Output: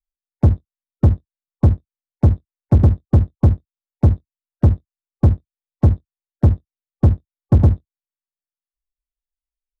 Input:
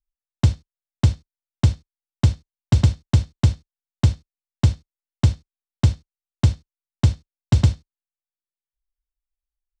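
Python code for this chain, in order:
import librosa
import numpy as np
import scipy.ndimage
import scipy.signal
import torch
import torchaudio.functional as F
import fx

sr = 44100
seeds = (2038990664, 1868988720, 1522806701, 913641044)

y = fx.spec_gate(x, sr, threshold_db=-20, keep='strong')
y = fx.leveller(y, sr, passes=3)
y = fx.doubler(y, sr, ms=22.0, db=-13.0)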